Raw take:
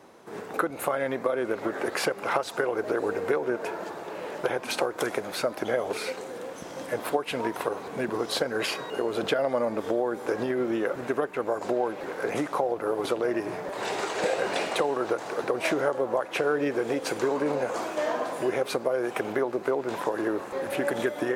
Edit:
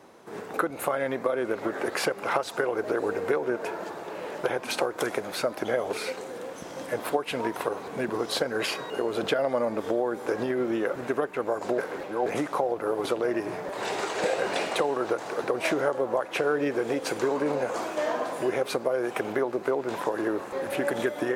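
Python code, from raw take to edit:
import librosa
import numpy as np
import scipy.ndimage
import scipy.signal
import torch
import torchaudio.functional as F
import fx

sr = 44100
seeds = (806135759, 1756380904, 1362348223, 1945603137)

y = fx.edit(x, sr, fx.reverse_span(start_s=11.78, length_s=0.48), tone=tone)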